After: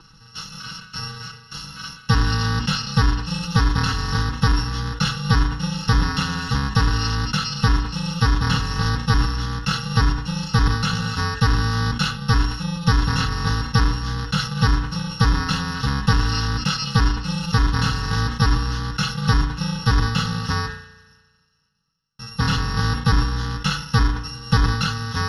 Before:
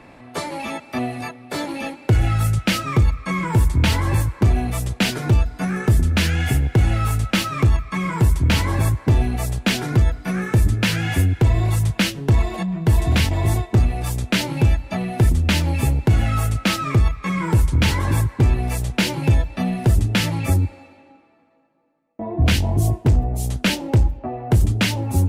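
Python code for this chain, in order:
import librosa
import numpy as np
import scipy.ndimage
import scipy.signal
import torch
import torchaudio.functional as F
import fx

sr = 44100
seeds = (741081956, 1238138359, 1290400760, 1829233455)

y = fx.bit_reversed(x, sr, seeds[0], block=128)
y = scipy.signal.sosfilt(scipy.signal.butter(4, 6900.0, 'lowpass', fs=sr, output='sos'), y)
y = fx.peak_eq(y, sr, hz=1400.0, db=3.5, octaves=1.8)
y = fx.fixed_phaser(y, sr, hz=2300.0, stages=6)
y = y + 0.76 * np.pad(y, (int(6.1 * sr / 1000.0), 0))[:len(y)]
y = fx.rev_spring(y, sr, rt60_s=1.4, pass_ms=(34,), chirp_ms=45, drr_db=12.0)
y = fx.sustainer(y, sr, db_per_s=90.0)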